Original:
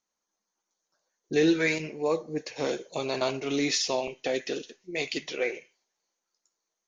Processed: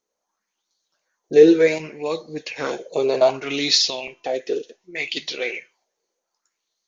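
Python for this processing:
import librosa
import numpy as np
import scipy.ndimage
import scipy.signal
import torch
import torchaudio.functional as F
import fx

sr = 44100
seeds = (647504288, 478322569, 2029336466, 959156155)

y = fx.comb_fb(x, sr, f0_hz=340.0, decay_s=0.96, harmonics='all', damping=0.0, mix_pct=40, at=(3.9, 5.17))
y = fx.bell_lfo(y, sr, hz=0.66, low_hz=420.0, high_hz=4300.0, db=15)
y = y * 10.0 ** (1.0 / 20.0)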